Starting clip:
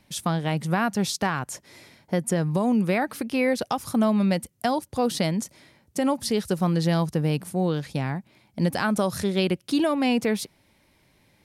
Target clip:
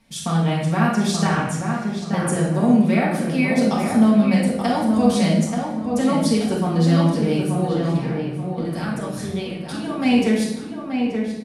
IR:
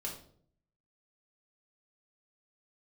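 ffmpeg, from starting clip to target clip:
-filter_complex "[0:a]asettb=1/sr,asplit=3[a][b][c];[a]atrim=end=7.724[d];[b]atrim=start=7.72:end=9.97,asetpts=PTS-STARTPTS,afade=t=in:d=0.004:c=qsin,afade=t=out:st=2.246:d=0.004:c=qsin,acompressor=threshold=-29dB:ratio=6[e];[c]atrim=start=9.966[f];[d][e]acrossfade=d=0.004:c1=hsin:c2=qsin[g];[g][f]acrossfade=d=0.004:c1=qsin:c2=hsin,asplit=2[h][i];[i]adelay=880,lowpass=f=2.3k:p=1,volume=-5dB,asplit=2[j][k];[k]adelay=880,lowpass=f=2.3k:p=1,volume=0.35,asplit=2[l][m];[m]adelay=880,lowpass=f=2.3k:p=1,volume=0.35,asplit=2[n][o];[o]adelay=880,lowpass=f=2.3k:p=1,volume=0.35[p];[h][j][l][n][p]amix=inputs=5:normalize=0[q];[1:a]atrim=start_sample=2205,asetrate=22932,aresample=44100[r];[q][r]afir=irnorm=-1:irlink=0,volume=-1.5dB"

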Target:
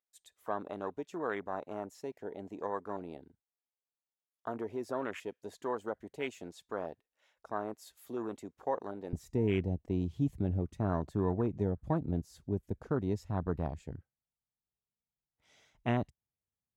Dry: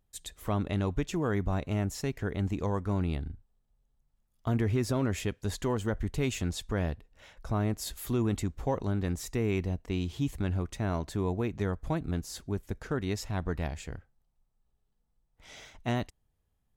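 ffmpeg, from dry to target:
-af "afwtdn=0.0126,asetnsamples=n=441:p=0,asendcmd='9.13 highpass f 88',highpass=480"

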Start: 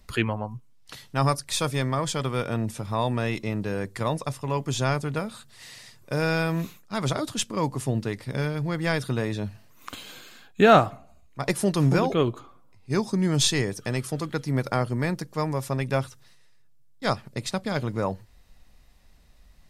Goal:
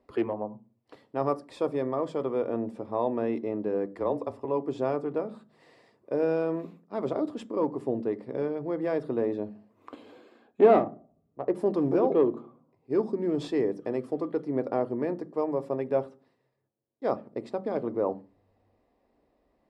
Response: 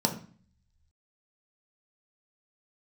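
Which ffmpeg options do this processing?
-filter_complex "[0:a]aeval=exprs='clip(val(0),-1,0.119)':c=same,asettb=1/sr,asplit=3[a][b][c];[a]atrim=end=3.934[d];[b]atrim=start=3.93:end=4.45,asetpts=PTS-STARTPTS,afade=t=in:d=0.004:c=qsin,afade=t=out:st=0.516:d=0.004:c=qsin,afreqshift=-24[e];[c]atrim=start=4.446[f];[d][e]acrossfade=d=0.004:c1=hsin:c2=qsin[g];[g][f]acrossfade=d=0.004:c1=qsin:c2=hsin,asettb=1/sr,asplit=3[h][i][j];[h]atrim=end=10.794[k];[i]atrim=start=10.79:end=11.55,asetpts=PTS-STARTPTS,afade=t=in:d=0.004:c=qsin,afade=t=out:st=0.756:d=0.004:c=qsin,adynamicsmooth=sensitivity=1:basefreq=500[l];[j]atrim=start=11.546[m];[k][l]acrossfade=d=0.004:c1=hsin:c2=qsin[n];[n][m]acrossfade=d=0.004:c1=qsin:c2=hsin,bandpass=f=460:t=q:w=1.4:csg=0,asplit=2[o][p];[1:a]atrim=start_sample=2205,asetrate=57330,aresample=44100[q];[p][q]afir=irnorm=-1:irlink=0,volume=-16dB[r];[o][r]amix=inputs=2:normalize=0"

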